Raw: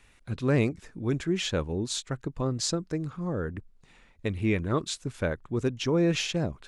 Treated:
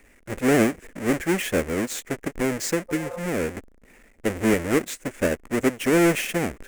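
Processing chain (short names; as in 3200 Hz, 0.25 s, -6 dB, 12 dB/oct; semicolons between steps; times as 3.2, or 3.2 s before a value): half-waves squared off; ten-band EQ 125 Hz -8 dB, 250 Hz +7 dB, 500 Hz +7 dB, 1000 Hz -4 dB, 2000 Hz +11 dB, 4000 Hz -10 dB, 8000 Hz +7 dB; spectral repair 2.92–3.16, 460–1300 Hz after; gain -3 dB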